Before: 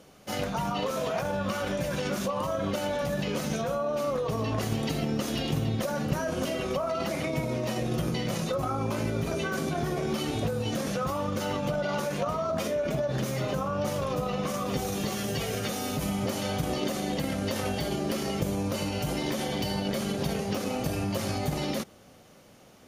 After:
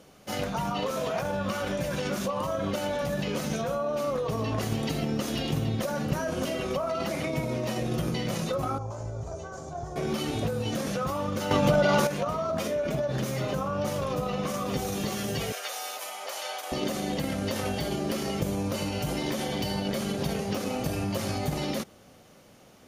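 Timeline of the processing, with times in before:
8.78–9.96 s: FFT filter 100 Hz 0 dB, 220 Hz -19 dB, 730 Hz -2 dB, 1.3 kHz -10 dB, 2.4 kHz -23 dB, 4 kHz -17 dB, 7.1 kHz -3 dB, 11 kHz -27 dB
11.51–12.07 s: gain +7.5 dB
15.52–16.72 s: high-pass 620 Hz 24 dB/octave

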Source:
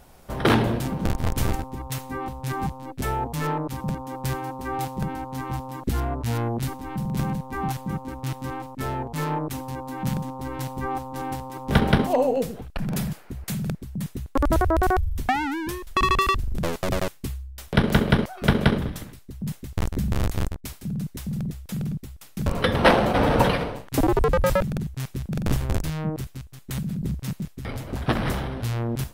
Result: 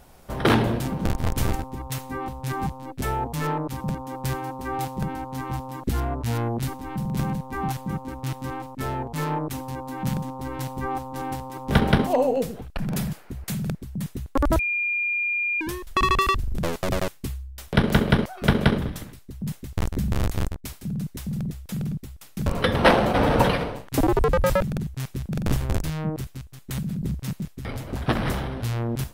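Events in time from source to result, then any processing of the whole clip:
14.59–15.61 s: bleep 2.41 kHz -22 dBFS

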